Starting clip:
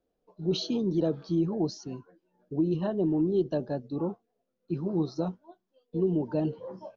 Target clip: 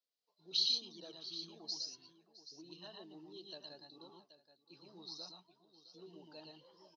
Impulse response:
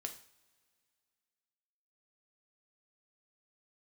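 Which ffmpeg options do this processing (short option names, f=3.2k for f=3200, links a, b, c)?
-af "bandpass=f=4.5k:t=q:w=3.4:csg=0,aecho=1:1:115|116|663|778:0.473|0.668|0.106|0.224,volume=4dB"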